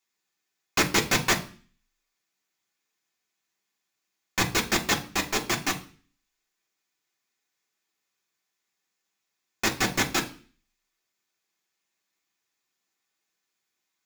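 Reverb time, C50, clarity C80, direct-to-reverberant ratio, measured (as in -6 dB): 0.40 s, 14.0 dB, 19.0 dB, 0.0 dB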